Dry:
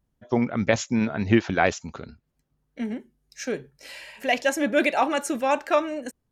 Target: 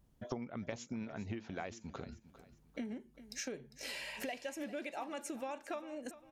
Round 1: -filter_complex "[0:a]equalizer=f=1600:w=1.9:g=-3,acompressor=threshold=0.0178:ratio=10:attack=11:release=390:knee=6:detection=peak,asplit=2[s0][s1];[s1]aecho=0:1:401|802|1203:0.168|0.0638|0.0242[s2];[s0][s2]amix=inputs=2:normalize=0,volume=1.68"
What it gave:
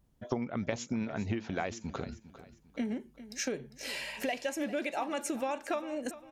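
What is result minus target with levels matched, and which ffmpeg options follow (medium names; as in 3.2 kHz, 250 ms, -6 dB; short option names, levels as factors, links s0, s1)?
compression: peak gain reduction -8 dB
-filter_complex "[0:a]equalizer=f=1600:w=1.9:g=-3,acompressor=threshold=0.00631:ratio=10:attack=11:release=390:knee=6:detection=peak,asplit=2[s0][s1];[s1]aecho=0:1:401|802|1203:0.168|0.0638|0.0242[s2];[s0][s2]amix=inputs=2:normalize=0,volume=1.68"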